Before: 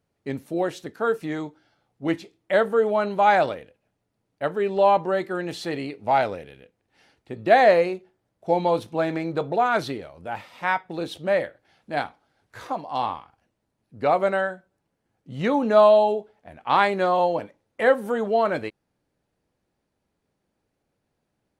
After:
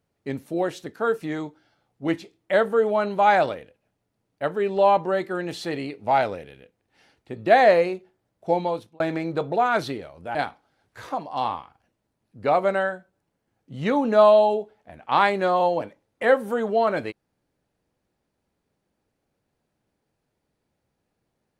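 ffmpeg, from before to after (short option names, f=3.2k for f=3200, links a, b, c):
-filter_complex "[0:a]asplit=3[a][b][c];[a]atrim=end=9,asetpts=PTS-STARTPTS,afade=t=out:st=8.5:d=0.5[d];[b]atrim=start=9:end=10.352,asetpts=PTS-STARTPTS,afade=t=in:d=0.004:c=hsin[e];[c]atrim=start=11.928[f];[d][e]concat=n=2:v=0:a=1[g];[g][f]acrossfade=d=0.004:c1=hsin:c2=hsin"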